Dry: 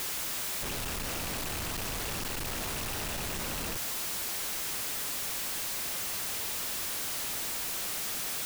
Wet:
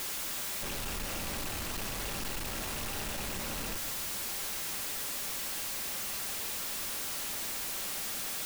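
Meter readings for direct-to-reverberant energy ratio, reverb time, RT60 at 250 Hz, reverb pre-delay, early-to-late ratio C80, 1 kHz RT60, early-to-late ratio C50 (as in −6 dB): 8.5 dB, 2.2 s, 3.3 s, 4 ms, 14.0 dB, 1.9 s, 12.5 dB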